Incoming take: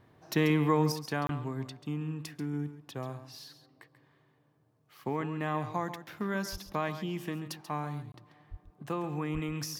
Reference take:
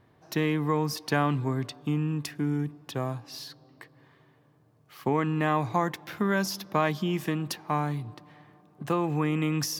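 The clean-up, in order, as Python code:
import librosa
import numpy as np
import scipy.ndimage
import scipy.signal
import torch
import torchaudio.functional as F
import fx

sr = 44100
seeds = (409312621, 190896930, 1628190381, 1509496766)

y = fx.fix_deplosive(x, sr, at_s=(6.51, 8.5, 9.33))
y = fx.fix_interpolate(y, sr, at_s=(1.27, 8.12), length_ms=22.0)
y = fx.fix_echo_inverse(y, sr, delay_ms=137, level_db=-11.5)
y = fx.gain(y, sr, db=fx.steps((0.0, 0.0), (0.92, 7.5)))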